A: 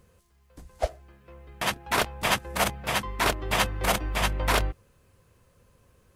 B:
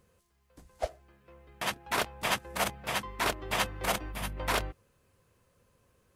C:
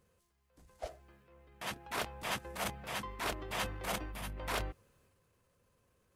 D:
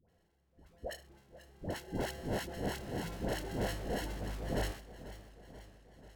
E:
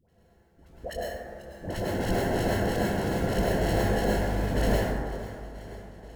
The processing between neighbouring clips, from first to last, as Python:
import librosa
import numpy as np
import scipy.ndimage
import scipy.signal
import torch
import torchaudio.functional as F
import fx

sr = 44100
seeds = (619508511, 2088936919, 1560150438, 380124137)

y1 = fx.spec_box(x, sr, start_s=4.12, length_s=0.25, low_hz=300.0, high_hz=8900.0, gain_db=-7)
y1 = fx.low_shelf(y1, sr, hz=100.0, db=-7.0)
y1 = F.gain(torch.from_numpy(y1), -5.0).numpy()
y2 = fx.transient(y1, sr, attack_db=-5, sustain_db=5)
y2 = F.gain(torch.from_numpy(y2), -5.5).numpy()
y3 = fx.sample_hold(y2, sr, seeds[0], rate_hz=1200.0, jitter_pct=0)
y3 = fx.dispersion(y3, sr, late='highs', ms=90.0, hz=820.0)
y3 = fx.echo_warbled(y3, sr, ms=488, feedback_pct=62, rate_hz=2.8, cents=69, wet_db=-15.5)
y3 = F.gain(torch.from_numpy(y3), 1.5).numpy()
y4 = fx.rev_plate(y3, sr, seeds[1], rt60_s=1.8, hf_ratio=0.3, predelay_ms=90, drr_db=-6.0)
y4 = F.gain(torch.from_numpy(y4), 4.0).numpy()